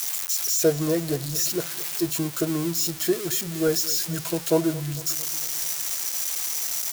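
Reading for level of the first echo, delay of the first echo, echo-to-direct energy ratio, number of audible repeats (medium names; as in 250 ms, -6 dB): -19.0 dB, 225 ms, -17.5 dB, 4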